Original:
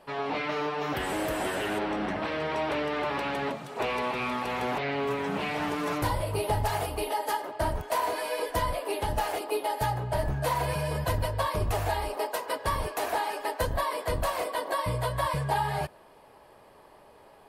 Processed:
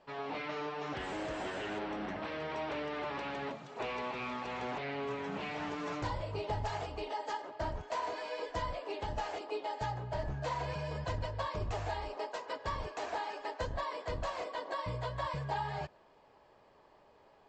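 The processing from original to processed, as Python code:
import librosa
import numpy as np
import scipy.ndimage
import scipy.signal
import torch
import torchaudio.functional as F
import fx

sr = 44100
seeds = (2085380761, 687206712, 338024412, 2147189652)

y = scipy.signal.sosfilt(scipy.signal.butter(16, 7600.0, 'lowpass', fs=sr, output='sos'), x)
y = F.gain(torch.from_numpy(y), -8.5).numpy()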